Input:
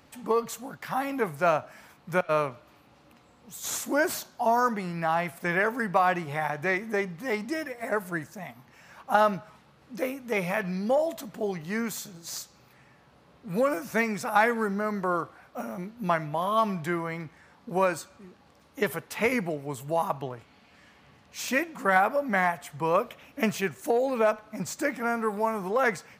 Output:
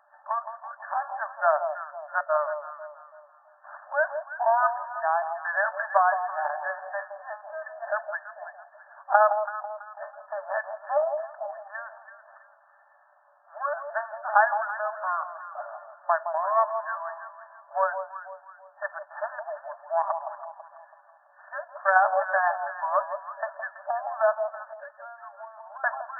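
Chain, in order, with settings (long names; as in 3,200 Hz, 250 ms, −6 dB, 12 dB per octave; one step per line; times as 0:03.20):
harmonic generator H 3 −18 dB, 6 −31 dB, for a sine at −9 dBFS
brick-wall band-pass 570–1,800 Hz
delay that swaps between a low-pass and a high-pass 165 ms, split 990 Hz, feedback 58%, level −6.5 dB
0:24.73–0:25.84: downward compressor 6 to 1, threshold −46 dBFS, peak gain reduction 18.5 dB
level +5 dB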